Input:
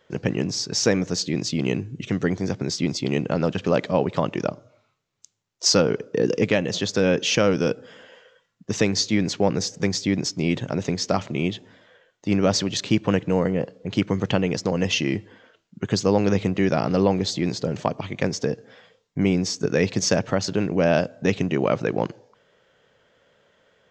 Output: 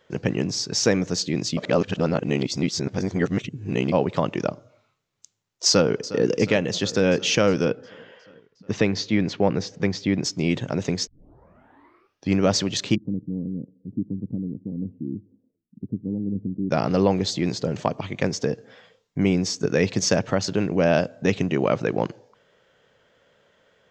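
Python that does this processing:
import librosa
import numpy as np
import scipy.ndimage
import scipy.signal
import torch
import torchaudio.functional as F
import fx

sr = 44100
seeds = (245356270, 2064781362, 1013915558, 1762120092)

y = fx.echo_throw(x, sr, start_s=5.67, length_s=0.56, ms=360, feedback_pct=70, wet_db=-15.5)
y = fx.lowpass(y, sr, hz=3600.0, slope=12, at=(7.65, 10.23))
y = fx.ladder_lowpass(y, sr, hz=300.0, resonance_pct=50, at=(12.94, 16.7), fade=0.02)
y = fx.edit(y, sr, fx.reverse_span(start_s=1.57, length_s=2.35),
    fx.tape_start(start_s=11.07, length_s=1.3), tone=tone)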